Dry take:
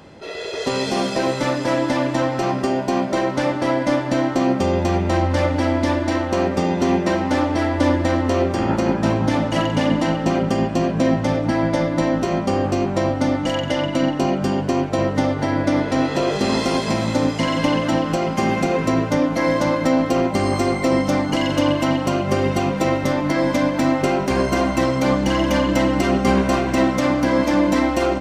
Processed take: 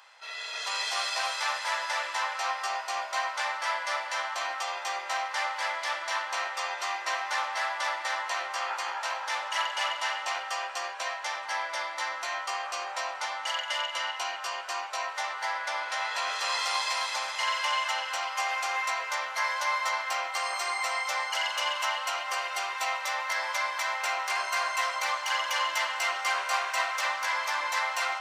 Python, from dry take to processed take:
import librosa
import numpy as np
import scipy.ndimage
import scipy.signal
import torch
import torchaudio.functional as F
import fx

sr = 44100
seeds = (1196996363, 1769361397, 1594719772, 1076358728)

y = scipy.signal.sosfilt(scipy.signal.cheby2(4, 70, 210.0, 'highpass', fs=sr, output='sos'), x)
y = y + 10.0 ** (-3.5 / 20.0) * np.pad(y, (int(261 * sr / 1000.0), 0))[:len(y)]
y = F.gain(torch.from_numpy(y), -3.5).numpy()